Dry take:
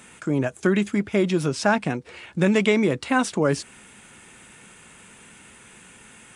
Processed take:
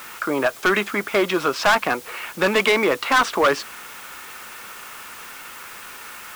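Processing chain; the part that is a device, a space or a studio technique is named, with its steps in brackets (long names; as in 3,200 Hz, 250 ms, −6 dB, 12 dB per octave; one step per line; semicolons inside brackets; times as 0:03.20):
drive-through speaker (band-pass filter 520–4,000 Hz; parametric band 1,200 Hz +9.5 dB 0.58 octaves; hard clipping −20.5 dBFS, distortion −6 dB; white noise bed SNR 19 dB)
level +8.5 dB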